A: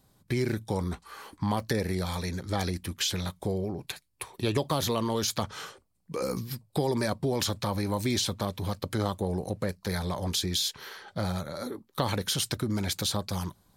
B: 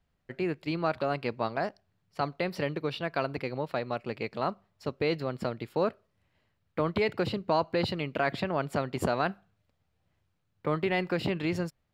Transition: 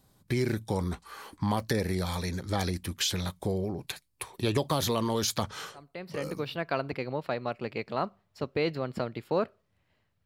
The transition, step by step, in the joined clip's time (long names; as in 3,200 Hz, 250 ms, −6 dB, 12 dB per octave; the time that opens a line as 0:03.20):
A
0:06.15: continue with B from 0:02.60, crossfade 0.92 s linear